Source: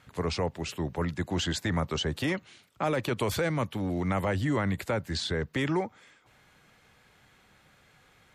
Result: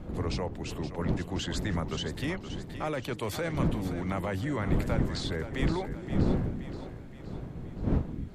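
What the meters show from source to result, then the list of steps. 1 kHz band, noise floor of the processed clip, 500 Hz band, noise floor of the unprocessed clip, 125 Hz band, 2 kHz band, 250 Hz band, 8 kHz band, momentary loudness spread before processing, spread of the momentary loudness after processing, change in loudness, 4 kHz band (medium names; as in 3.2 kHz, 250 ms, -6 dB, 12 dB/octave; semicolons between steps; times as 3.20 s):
-3.5 dB, -43 dBFS, -2.5 dB, -62 dBFS, +1.5 dB, -4.0 dB, +0.5 dB, -4.0 dB, 4 LU, 11 LU, -2.0 dB, -4.0 dB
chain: wind noise 210 Hz -29 dBFS; two-band feedback delay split 340 Hz, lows 260 ms, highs 523 ms, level -10.5 dB; attacks held to a fixed rise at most 330 dB/s; trim -4.5 dB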